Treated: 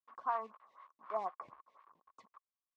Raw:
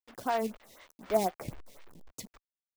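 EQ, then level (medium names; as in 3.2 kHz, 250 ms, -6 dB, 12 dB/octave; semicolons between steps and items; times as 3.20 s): band-pass filter 1.1 kHz, Q 12; distance through air 68 m; +11.0 dB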